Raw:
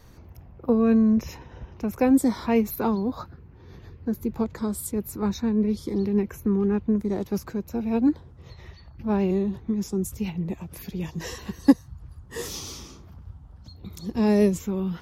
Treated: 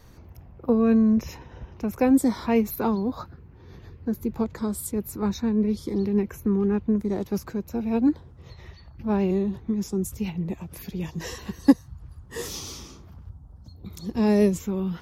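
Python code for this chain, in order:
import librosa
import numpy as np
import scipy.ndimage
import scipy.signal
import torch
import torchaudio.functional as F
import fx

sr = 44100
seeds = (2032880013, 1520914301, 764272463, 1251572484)

y = fx.peak_eq(x, sr, hz=2600.0, db=-14.0, octaves=1.7, at=(13.29, 13.86))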